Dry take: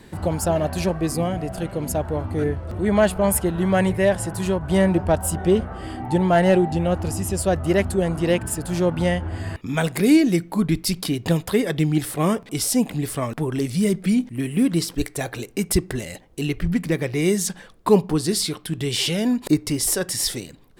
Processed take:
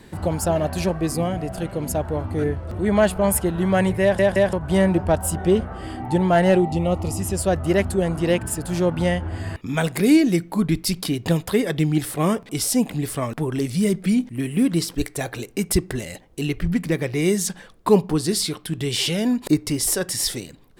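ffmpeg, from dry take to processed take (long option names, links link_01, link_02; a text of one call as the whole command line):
ffmpeg -i in.wav -filter_complex "[0:a]asettb=1/sr,asplit=3[link_01][link_02][link_03];[link_01]atrim=end=6.604[link_04];[link_02]atrim=start=6.6:end=7.2,asetpts=PTS-STARTPTS,afade=type=in:duration=0.004:curve=qsin,afade=type=out:start_time=0.596:duration=0.004:curve=qsin,asuperstop=centerf=1600:order=4:qfactor=3[link_05];[link_03]atrim=start=7.196[link_06];[link_04][link_05]acrossfade=duration=0.004:curve1=hsin:curve2=qsin[link_07];[link_07][link_06]acrossfade=duration=0.004:curve1=qsin:curve2=hsin,asplit=4[link_08][link_09][link_10][link_11];[link_08]atrim=end=4.192[link_12];[link_09]atrim=start=4.018:end=4.192[link_13];[link_10]atrim=start=4.018:end=4.192[link_14];[link_11]atrim=start=4.528[link_15];[link_12][link_13]acrossfade=duration=0.004:curve1=hsin:curve2=hsin[link_16];[link_16][link_14]acrossfade=duration=0.004:curve1=hsin:curve2=hsin[link_17];[link_17][link_15]acrossfade=duration=0.004:curve1=hsin:curve2=hsin" out.wav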